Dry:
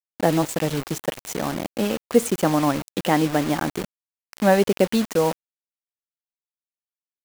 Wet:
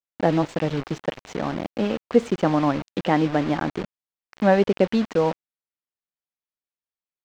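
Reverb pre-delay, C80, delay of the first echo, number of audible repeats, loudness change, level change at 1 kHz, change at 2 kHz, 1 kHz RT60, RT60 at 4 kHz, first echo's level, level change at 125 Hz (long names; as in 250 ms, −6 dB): no reverb audible, no reverb audible, no echo audible, no echo audible, −0.5 dB, −0.5 dB, −1.5 dB, no reverb audible, no reverb audible, no echo audible, 0.0 dB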